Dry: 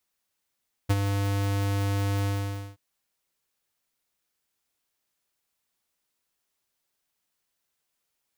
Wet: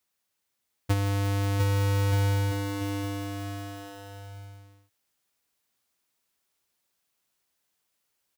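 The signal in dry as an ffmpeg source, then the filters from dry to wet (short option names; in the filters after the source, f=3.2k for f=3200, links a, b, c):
-f lavfi -i "aevalsrc='0.106*(2*lt(mod(99.7*t,1),0.5)-1)':d=1.876:s=44100,afade=t=in:d=0.016,afade=t=out:st=0.016:d=0.038:silence=0.473,afade=t=out:st=1.36:d=0.516"
-af "highpass=40,aecho=1:1:700|1225|1619|1914|2136:0.631|0.398|0.251|0.158|0.1"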